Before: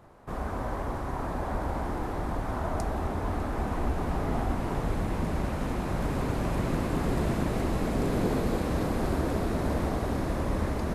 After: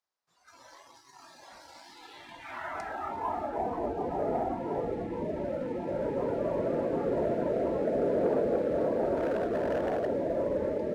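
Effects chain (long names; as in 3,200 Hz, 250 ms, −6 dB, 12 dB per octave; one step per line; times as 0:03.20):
noise reduction from a noise print of the clip's start 18 dB
band-pass filter sweep 5,200 Hz → 560 Hz, 0:01.79–0:03.72
0:09.16–0:10.07: hard clipping −35 dBFS, distortion −18 dB
leveller curve on the samples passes 1
level +5.5 dB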